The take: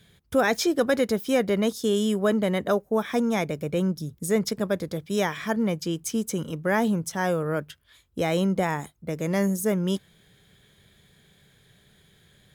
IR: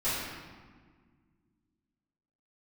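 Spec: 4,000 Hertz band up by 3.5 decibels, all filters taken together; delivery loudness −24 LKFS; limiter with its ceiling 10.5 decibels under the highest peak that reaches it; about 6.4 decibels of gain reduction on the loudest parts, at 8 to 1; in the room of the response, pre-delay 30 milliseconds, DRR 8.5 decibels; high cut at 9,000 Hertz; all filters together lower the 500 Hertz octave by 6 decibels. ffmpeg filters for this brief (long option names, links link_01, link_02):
-filter_complex "[0:a]lowpass=9000,equalizer=frequency=500:width_type=o:gain=-7.5,equalizer=frequency=4000:width_type=o:gain=5,acompressor=threshold=-28dB:ratio=8,alimiter=level_in=5dB:limit=-24dB:level=0:latency=1,volume=-5dB,asplit=2[link_01][link_02];[1:a]atrim=start_sample=2205,adelay=30[link_03];[link_02][link_03]afir=irnorm=-1:irlink=0,volume=-18dB[link_04];[link_01][link_04]amix=inputs=2:normalize=0,volume=13dB"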